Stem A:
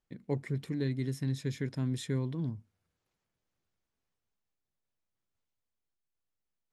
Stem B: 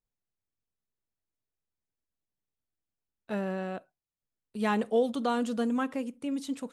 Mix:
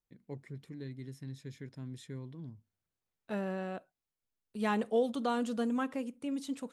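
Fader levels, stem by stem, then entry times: -11.0, -3.5 dB; 0.00, 0.00 s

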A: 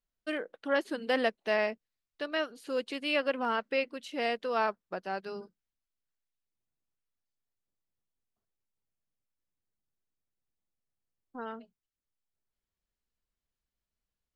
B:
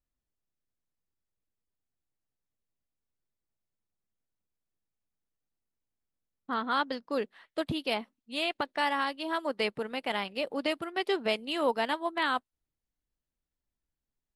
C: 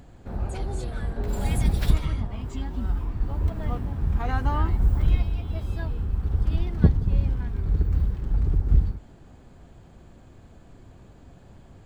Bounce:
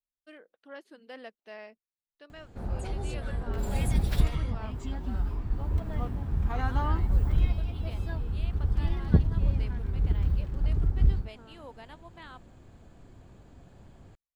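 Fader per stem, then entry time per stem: -16.5, -19.0, -3.5 dB; 0.00, 0.00, 2.30 s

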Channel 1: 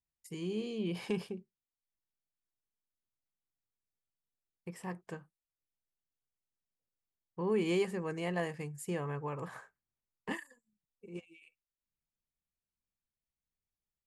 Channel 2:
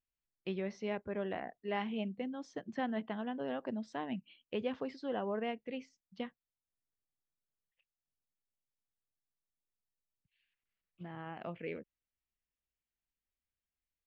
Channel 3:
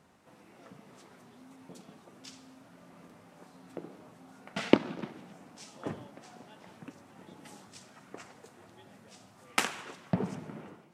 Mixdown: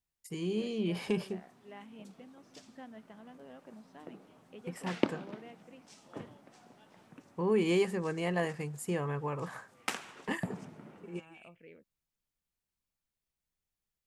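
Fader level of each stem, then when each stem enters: +3.0, -13.5, -7.0 dB; 0.00, 0.00, 0.30 s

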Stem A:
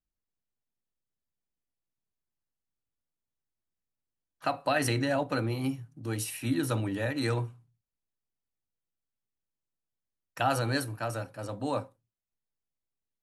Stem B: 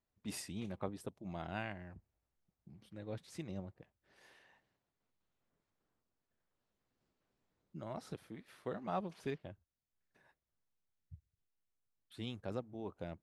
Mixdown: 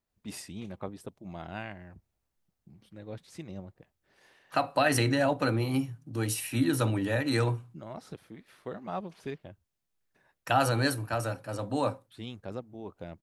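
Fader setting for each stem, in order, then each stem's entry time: +2.5, +2.5 dB; 0.10, 0.00 s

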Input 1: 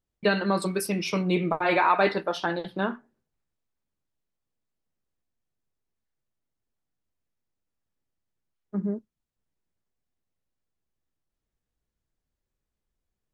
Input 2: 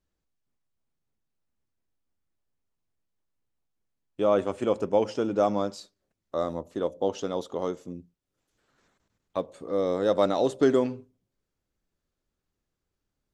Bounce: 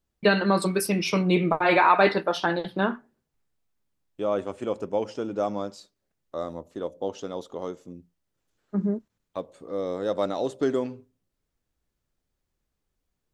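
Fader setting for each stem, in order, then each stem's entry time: +3.0, -3.5 dB; 0.00, 0.00 s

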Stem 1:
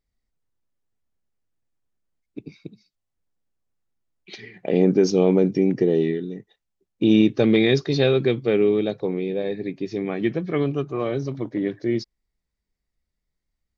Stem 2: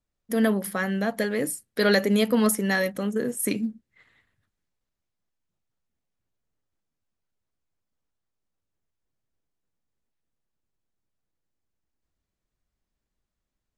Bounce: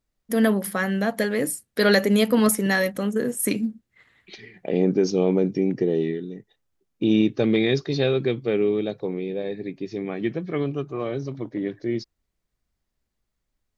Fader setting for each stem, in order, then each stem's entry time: -3.0, +2.5 dB; 0.00, 0.00 s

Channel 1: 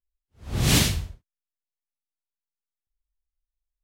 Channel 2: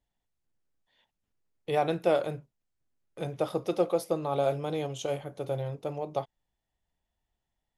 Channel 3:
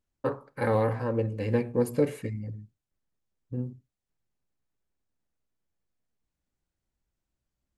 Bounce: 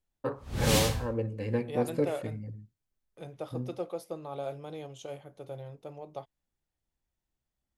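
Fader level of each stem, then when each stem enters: -6.5, -9.5, -4.0 dB; 0.00, 0.00, 0.00 s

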